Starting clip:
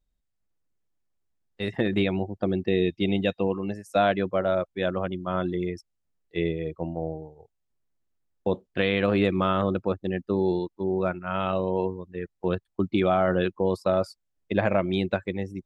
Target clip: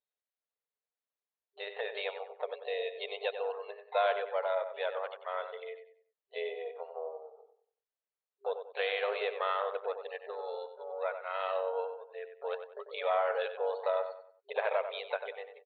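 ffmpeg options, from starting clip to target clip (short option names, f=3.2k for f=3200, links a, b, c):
-filter_complex "[0:a]asplit=2[a][b];[b]asetrate=66075,aresample=44100,atempo=0.66742,volume=-13dB[c];[a][c]amix=inputs=2:normalize=0,afftfilt=real='re*between(b*sr/4096,400,4400)':imag='im*between(b*sr/4096,400,4400)':win_size=4096:overlap=0.75,asplit=2[d][e];[e]adelay=94,lowpass=f=2.8k:p=1,volume=-8.5dB,asplit=2[f][g];[g]adelay=94,lowpass=f=2.8k:p=1,volume=0.36,asplit=2[h][i];[i]adelay=94,lowpass=f=2.8k:p=1,volume=0.36,asplit=2[j][k];[k]adelay=94,lowpass=f=2.8k:p=1,volume=0.36[l];[d][f][h][j][l]amix=inputs=5:normalize=0,volume=-7dB"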